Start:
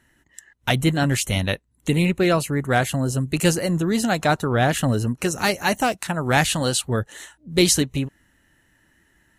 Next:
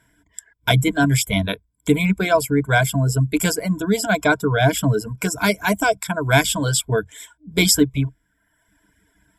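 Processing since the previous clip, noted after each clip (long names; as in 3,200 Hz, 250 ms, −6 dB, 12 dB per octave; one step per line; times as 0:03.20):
EQ curve with evenly spaced ripples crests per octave 1.7, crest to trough 17 dB
reverb reduction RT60 0.85 s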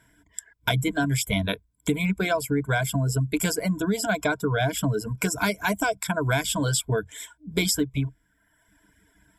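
downward compressor, threshold −21 dBFS, peak gain reduction 11 dB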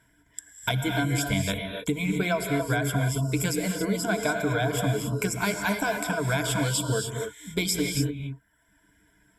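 reverb whose tail is shaped and stops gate 310 ms rising, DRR 3 dB
level −3 dB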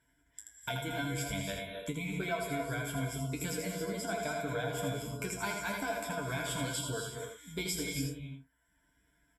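tuned comb filter 53 Hz, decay 0.19 s, harmonics odd, mix 90%
on a send: single-tap delay 81 ms −5.5 dB
on the sum: level −2.5 dB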